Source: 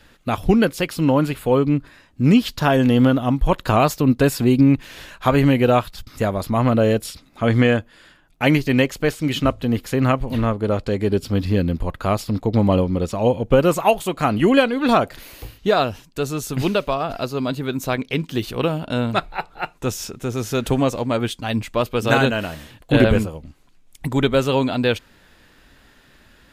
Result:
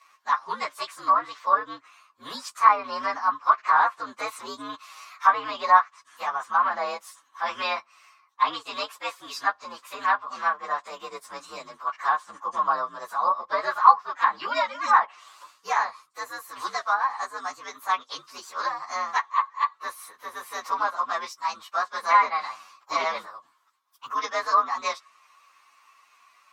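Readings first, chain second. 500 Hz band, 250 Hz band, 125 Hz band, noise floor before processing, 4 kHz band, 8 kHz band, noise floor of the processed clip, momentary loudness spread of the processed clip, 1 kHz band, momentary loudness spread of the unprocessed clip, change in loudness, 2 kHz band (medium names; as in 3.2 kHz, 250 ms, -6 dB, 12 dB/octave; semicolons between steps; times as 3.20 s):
-16.5 dB, -30.5 dB, under -40 dB, -53 dBFS, -8.0 dB, -8.5 dB, -63 dBFS, 18 LU, +3.5 dB, 10 LU, -5.5 dB, -3.0 dB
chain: frequency axis rescaled in octaves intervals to 119%; resonant high-pass 1.1 kHz, resonance Q 12; low-pass that closes with the level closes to 2.4 kHz, closed at -12.5 dBFS; trim -4.5 dB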